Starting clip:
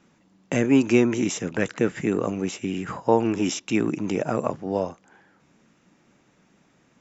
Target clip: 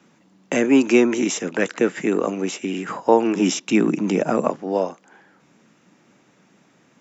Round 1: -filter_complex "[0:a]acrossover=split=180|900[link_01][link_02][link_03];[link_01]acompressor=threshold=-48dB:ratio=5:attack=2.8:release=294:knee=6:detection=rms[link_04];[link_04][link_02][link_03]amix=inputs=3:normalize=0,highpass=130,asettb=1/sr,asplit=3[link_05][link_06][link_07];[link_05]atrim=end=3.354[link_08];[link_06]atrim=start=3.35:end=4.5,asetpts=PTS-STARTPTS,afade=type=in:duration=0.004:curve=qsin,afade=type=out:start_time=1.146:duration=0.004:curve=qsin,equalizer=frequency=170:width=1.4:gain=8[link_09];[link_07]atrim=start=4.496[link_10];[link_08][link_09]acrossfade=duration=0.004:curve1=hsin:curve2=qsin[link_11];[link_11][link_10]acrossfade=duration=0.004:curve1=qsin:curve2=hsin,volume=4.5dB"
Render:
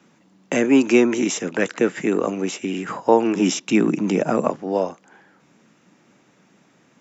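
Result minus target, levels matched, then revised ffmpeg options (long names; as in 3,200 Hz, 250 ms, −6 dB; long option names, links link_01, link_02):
downward compressor: peak gain reduction −7 dB
-filter_complex "[0:a]acrossover=split=180|900[link_01][link_02][link_03];[link_01]acompressor=threshold=-57dB:ratio=5:attack=2.8:release=294:knee=6:detection=rms[link_04];[link_04][link_02][link_03]amix=inputs=3:normalize=0,highpass=130,asettb=1/sr,asplit=3[link_05][link_06][link_07];[link_05]atrim=end=3.354[link_08];[link_06]atrim=start=3.35:end=4.5,asetpts=PTS-STARTPTS,afade=type=in:duration=0.004:curve=qsin,afade=type=out:start_time=1.146:duration=0.004:curve=qsin,equalizer=frequency=170:width=1.4:gain=8[link_09];[link_07]atrim=start=4.496[link_10];[link_08][link_09]acrossfade=duration=0.004:curve1=hsin:curve2=qsin[link_11];[link_11][link_10]acrossfade=duration=0.004:curve1=qsin:curve2=hsin,volume=4.5dB"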